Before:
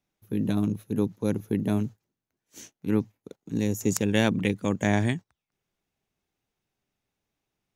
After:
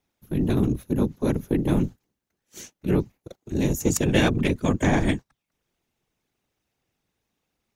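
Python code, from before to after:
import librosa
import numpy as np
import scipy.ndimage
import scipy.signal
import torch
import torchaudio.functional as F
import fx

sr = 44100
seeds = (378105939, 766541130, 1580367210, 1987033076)

p1 = 10.0 ** (-21.5 / 20.0) * np.tanh(x / 10.0 ** (-21.5 / 20.0))
p2 = x + (p1 * 10.0 ** (-3.0 / 20.0))
y = fx.whisperise(p2, sr, seeds[0])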